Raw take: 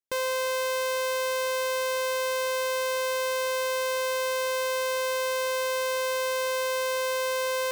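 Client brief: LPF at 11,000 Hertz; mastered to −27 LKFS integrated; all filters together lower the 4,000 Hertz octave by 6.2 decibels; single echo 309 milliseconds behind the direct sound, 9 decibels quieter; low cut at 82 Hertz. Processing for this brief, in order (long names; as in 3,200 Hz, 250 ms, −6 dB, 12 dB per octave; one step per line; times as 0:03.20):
high-pass filter 82 Hz
low-pass filter 11,000 Hz
parametric band 4,000 Hz −8 dB
single-tap delay 309 ms −9 dB
level −0.5 dB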